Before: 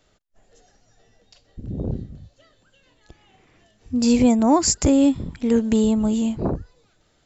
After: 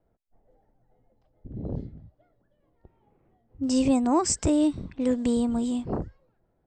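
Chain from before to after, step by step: low-pass opened by the level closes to 710 Hz, open at -17 dBFS; speed mistake 44.1 kHz file played as 48 kHz; gain -6 dB

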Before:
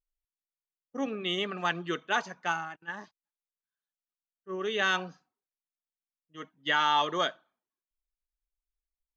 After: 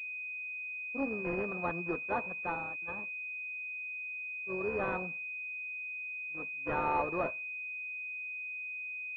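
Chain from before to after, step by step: sample sorter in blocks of 8 samples; pulse-width modulation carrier 2500 Hz; gain -2.5 dB

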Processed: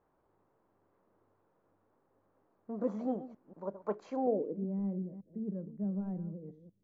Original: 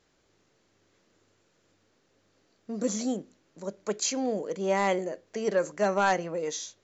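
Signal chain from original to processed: reverse delay 0.186 s, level -12 dB; low-pass sweep 980 Hz -> 190 Hz, 4.13–4.7; gain -6 dB

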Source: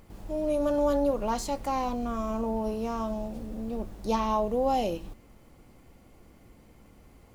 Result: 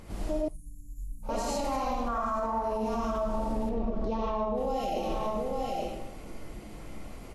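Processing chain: 2.08–2.62 band shelf 1200 Hz +14.5 dB; echo 0.858 s -15 dB; reverb RT60 0.80 s, pre-delay 40 ms, DRR -4 dB; compressor, threshold -27 dBFS, peak gain reduction 13 dB; 3.69–4.58 tape spacing loss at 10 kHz 26 dB; limiter -28.5 dBFS, peak gain reduction 10.5 dB; 0.48–1.29 Chebyshev band-stop 170–7500 Hz, order 4; gain +6 dB; Vorbis 32 kbps 32000 Hz

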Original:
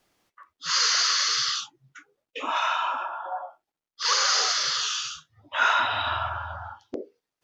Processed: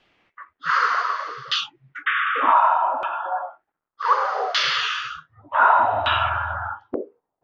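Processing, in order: painted sound noise, 2.06–2.54, 1100–3700 Hz -29 dBFS; LFO low-pass saw down 0.66 Hz 640–3100 Hz; gain +5.5 dB

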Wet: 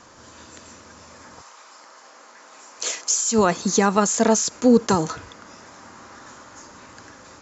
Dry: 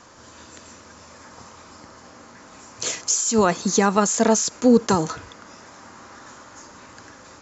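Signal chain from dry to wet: 1.4–3.31 HPF 740 Hz -> 350 Hz 12 dB/oct

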